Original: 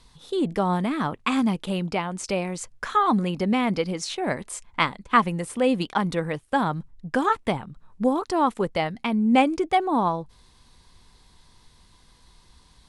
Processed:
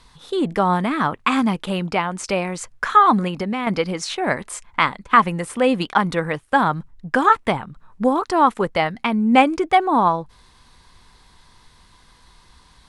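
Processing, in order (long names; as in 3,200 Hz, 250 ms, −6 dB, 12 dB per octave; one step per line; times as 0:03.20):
parametric band 1,400 Hz +6.5 dB 1.8 octaves
0:03.27–0:03.67: downward compressor, threshold −24 dBFS, peak gain reduction 7.5 dB
boost into a limiter +3.5 dB
level −1 dB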